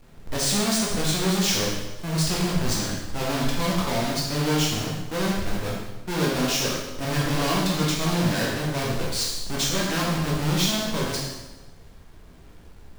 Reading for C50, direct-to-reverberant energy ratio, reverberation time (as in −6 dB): 1.0 dB, −4.5 dB, 1.1 s